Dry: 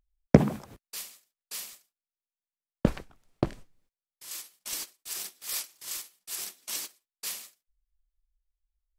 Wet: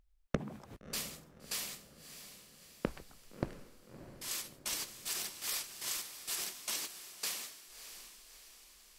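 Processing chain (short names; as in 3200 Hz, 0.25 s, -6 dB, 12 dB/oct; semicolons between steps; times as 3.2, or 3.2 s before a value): high shelf 6600 Hz -6 dB; compressor 5:1, threshold -41 dBFS, peak gain reduction 27 dB; on a send: diffused feedback echo 0.631 s, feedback 52%, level -11.5 dB; on the sum: gain +6 dB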